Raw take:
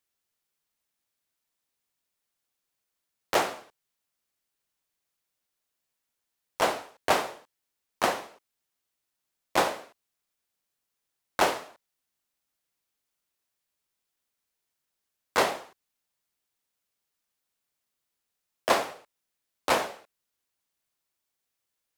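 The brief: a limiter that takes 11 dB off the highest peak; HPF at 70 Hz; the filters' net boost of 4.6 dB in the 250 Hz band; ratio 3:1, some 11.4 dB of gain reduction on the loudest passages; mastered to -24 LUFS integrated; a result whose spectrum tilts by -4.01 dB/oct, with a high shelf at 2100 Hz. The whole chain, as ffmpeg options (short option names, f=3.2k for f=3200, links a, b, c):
-af "highpass=70,equalizer=f=250:t=o:g=6.5,highshelf=f=2.1k:g=-8.5,acompressor=threshold=-35dB:ratio=3,volume=20.5dB,alimiter=limit=-7.5dB:level=0:latency=1"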